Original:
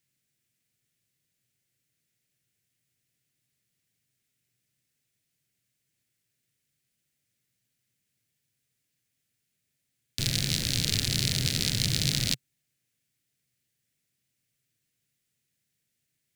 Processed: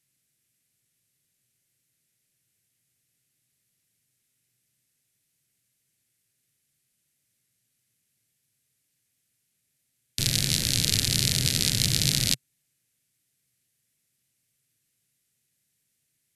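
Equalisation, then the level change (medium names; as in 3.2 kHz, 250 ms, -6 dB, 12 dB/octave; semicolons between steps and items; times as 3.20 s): brick-wall FIR low-pass 13 kHz; treble shelf 9.2 kHz +11 dB; +1.5 dB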